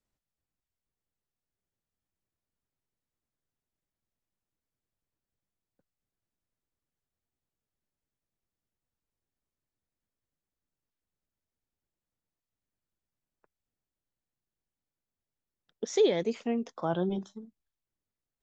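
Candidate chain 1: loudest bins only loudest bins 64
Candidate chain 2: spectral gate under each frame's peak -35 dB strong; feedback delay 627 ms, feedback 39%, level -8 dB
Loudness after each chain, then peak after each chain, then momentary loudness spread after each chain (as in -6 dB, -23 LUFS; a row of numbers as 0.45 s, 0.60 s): -30.0 LUFS, -30.5 LUFS; -15.0 dBFS, -15.0 dBFS; 17 LU, 17 LU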